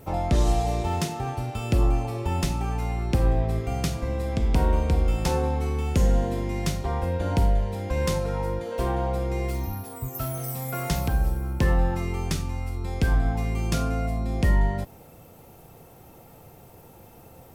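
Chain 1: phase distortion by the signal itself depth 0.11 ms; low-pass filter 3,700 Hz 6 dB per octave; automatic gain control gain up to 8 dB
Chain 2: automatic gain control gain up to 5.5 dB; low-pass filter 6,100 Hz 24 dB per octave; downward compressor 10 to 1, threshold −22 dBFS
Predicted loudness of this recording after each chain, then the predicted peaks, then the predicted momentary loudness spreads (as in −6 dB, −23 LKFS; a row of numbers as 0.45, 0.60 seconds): −19.5, −28.0 LKFS; −4.0, −10.0 dBFS; 8, 18 LU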